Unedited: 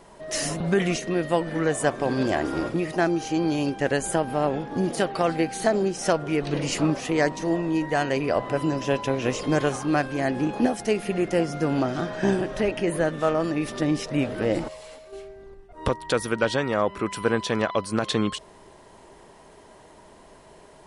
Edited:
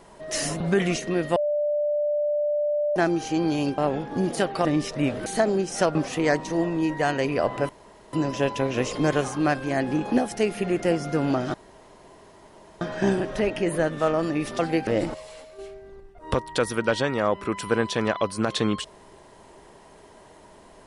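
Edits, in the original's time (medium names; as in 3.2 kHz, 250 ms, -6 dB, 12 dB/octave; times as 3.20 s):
1.36–2.96 s: bleep 591 Hz -21 dBFS
3.78–4.38 s: delete
5.25–5.53 s: swap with 13.80–14.41 s
6.22–6.87 s: delete
8.61 s: insert room tone 0.44 s
12.02 s: insert room tone 1.27 s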